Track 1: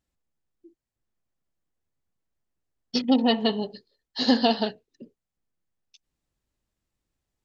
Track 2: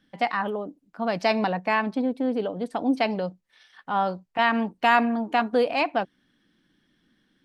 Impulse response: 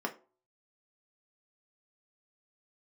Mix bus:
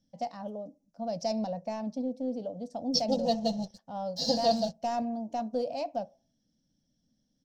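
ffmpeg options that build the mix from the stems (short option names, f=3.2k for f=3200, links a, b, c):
-filter_complex "[0:a]bandreject=f=3k:w=15,aecho=1:1:6:0.86,aeval=exprs='sgn(val(0))*max(abs(val(0))-0.00841,0)':c=same,volume=1dB,asplit=2[a][b];[b]volume=-19.5dB[c];[1:a]acontrast=78,volume=-9.5dB,asplit=2[d][e];[e]volume=-14dB[f];[2:a]atrim=start_sample=2205[g];[c][f]amix=inputs=2:normalize=0[h];[h][g]afir=irnorm=-1:irlink=0[i];[a][d][i]amix=inputs=3:normalize=0,firequalizer=gain_entry='entry(160,0);entry(390,-21);entry(560,-2);entry(1100,-25);entry(1700,-27);entry(3600,-14);entry(5700,6);entry(9300,-13)':delay=0.05:min_phase=1"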